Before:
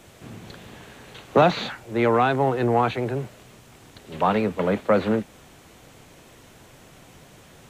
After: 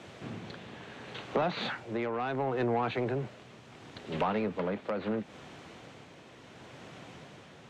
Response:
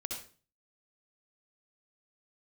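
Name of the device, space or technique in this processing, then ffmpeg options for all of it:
AM radio: -af "highpass=110,lowpass=4500,acompressor=threshold=0.0501:ratio=8,asoftclip=type=tanh:threshold=0.075,tremolo=f=0.72:d=0.4,volume=1.26"

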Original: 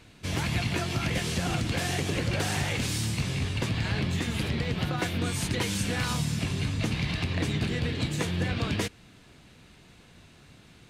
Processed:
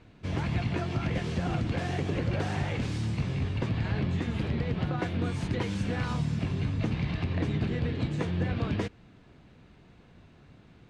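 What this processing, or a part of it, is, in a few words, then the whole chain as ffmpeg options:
through cloth: -af "lowpass=6900,highshelf=f=2300:g=-14"

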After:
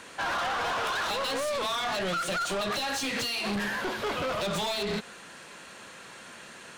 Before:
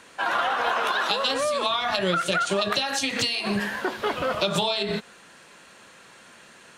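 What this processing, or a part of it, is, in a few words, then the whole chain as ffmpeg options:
saturation between pre-emphasis and de-emphasis: -af "highshelf=f=7700:g=8,asoftclip=type=tanh:threshold=0.0282,highshelf=f=7700:g=-8,volume=1.5"

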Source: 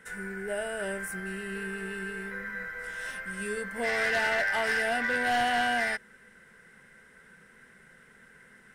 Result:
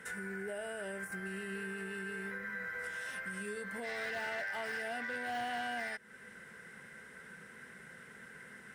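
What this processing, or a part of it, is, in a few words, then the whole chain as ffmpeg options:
podcast mastering chain: -filter_complex "[0:a]asettb=1/sr,asplit=3[s0][s1][s2];[s0]atrim=end=3.514[s3];[s1]atrim=start=3.51:end=4.11,asetpts=PTS-STARTPTS,afade=t=in:d=0.004:c=qsin,afade=t=out:st=0.596:d=0.004:c=qsin,equalizer=f=3900:w=7.6:g=7.5[s4];[s2]atrim=start=4.106[s5];[s3][s4]acrossfade=d=0.004:c1=hsin:c2=qsin[s6];[s6][s5]acrossfade=d=0.004:c1=qsin:c2=hsin,highpass=73,deesser=0.9,acompressor=threshold=0.0126:ratio=3,alimiter=level_in=3.76:limit=0.0631:level=0:latency=1:release=343,volume=0.266,volume=1.5" -ar 48000 -c:a libmp3lame -b:a 112k

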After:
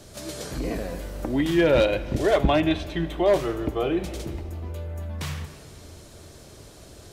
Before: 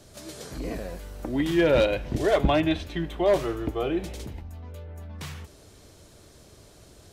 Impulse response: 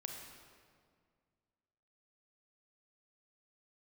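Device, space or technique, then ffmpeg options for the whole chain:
ducked reverb: -filter_complex "[0:a]asplit=3[s0][s1][s2];[1:a]atrim=start_sample=2205[s3];[s1][s3]afir=irnorm=-1:irlink=0[s4];[s2]apad=whole_len=314252[s5];[s4][s5]sidechaincompress=threshold=0.0355:ratio=8:attack=8.8:release=1160,volume=1.26[s6];[s0][s6]amix=inputs=2:normalize=0"

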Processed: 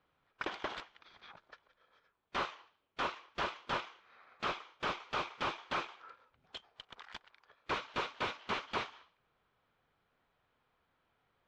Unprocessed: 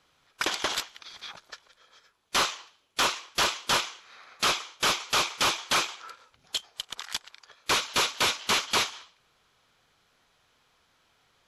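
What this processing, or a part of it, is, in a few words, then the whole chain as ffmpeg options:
phone in a pocket: -af "lowpass=3100,highshelf=f=2400:g=-9,volume=0.447"

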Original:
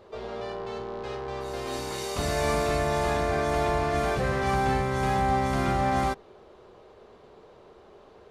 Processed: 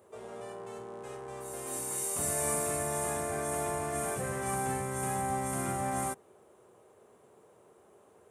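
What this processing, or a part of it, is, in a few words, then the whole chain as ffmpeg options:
budget condenser microphone: -af "highpass=f=87:w=0.5412,highpass=f=87:w=1.3066,highshelf=f=6400:t=q:w=3:g=14,volume=0.398"

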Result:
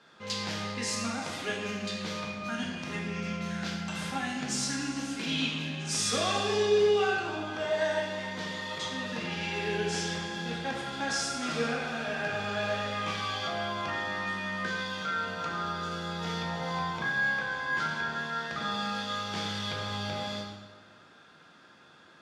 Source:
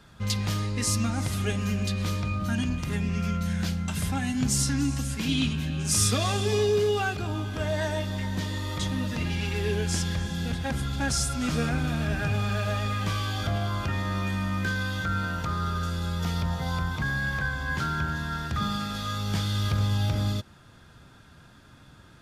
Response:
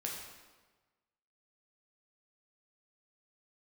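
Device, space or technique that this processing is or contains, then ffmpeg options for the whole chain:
supermarket ceiling speaker: -filter_complex "[0:a]highpass=320,lowpass=5700[s0];[1:a]atrim=start_sample=2205[s1];[s0][s1]afir=irnorm=-1:irlink=0"

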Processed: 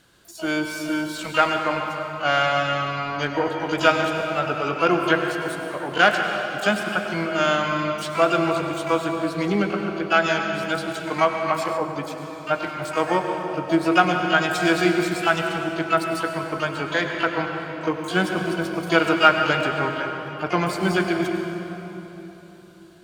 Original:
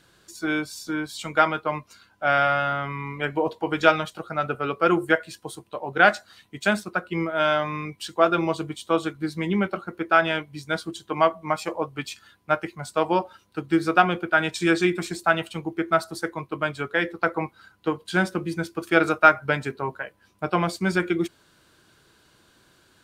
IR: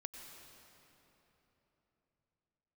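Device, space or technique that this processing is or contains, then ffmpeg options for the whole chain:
shimmer-style reverb: -filter_complex "[0:a]asplit=2[s0][s1];[s1]asetrate=88200,aresample=44100,atempo=0.5,volume=0.316[s2];[s0][s2]amix=inputs=2:normalize=0[s3];[1:a]atrim=start_sample=2205[s4];[s3][s4]afir=irnorm=-1:irlink=0,asplit=3[s5][s6][s7];[s5]afade=t=out:st=11.76:d=0.02[s8];[s6]adynamicequalizer=threshold=0.00562:dfrequency=1500:dqfactor=0.7:tfrequency=1500:tqfactor=0.7:attack=5:release=100:ratio=0.375:range=3:mode=cutabove:tftype=highshelf,afade=t=in:st=11.76:d=0.02,afade=t=out:st=12.53:d=0.02[s9];[s7]afade=t=in:st=12.53:d=0.02[s10];[s8][s9][s10]amix=inputs=3:normalize=0,volume=1.78"

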